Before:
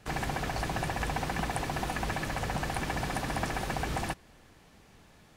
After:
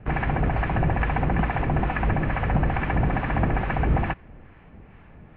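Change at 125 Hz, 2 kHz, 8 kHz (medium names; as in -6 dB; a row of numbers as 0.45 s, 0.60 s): +12.5 dB, +5.5 dB, under -40 dB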